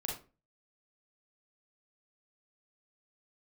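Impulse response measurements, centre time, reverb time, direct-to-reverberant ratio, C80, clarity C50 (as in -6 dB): 35 ms, 0.35 s, -2.5 dB, 11.5 dB, 5.0 dB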